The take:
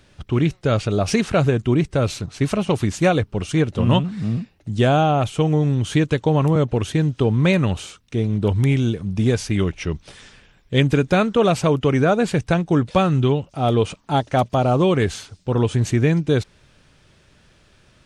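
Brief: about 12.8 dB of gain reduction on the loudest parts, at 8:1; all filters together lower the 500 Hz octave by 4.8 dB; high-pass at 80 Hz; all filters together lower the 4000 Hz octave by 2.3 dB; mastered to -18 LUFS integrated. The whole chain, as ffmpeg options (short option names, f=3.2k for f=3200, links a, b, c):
-af "highpass=80,equalizer=f=500:t=o:g=-6,equalizer=f=4k:t=o:g=-3,acompressor=threshold=-28dB:ratio=8,volume=15dB"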